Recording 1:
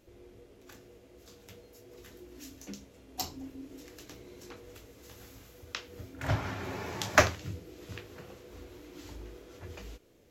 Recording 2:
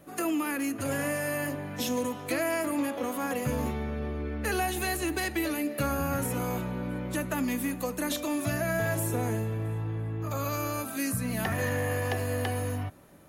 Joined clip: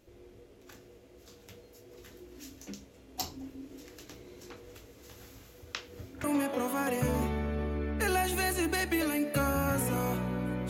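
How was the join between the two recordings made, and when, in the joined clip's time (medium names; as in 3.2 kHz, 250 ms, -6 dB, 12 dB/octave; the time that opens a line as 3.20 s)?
recording 1
6.24 s: go over to recording 2 from 2.68 s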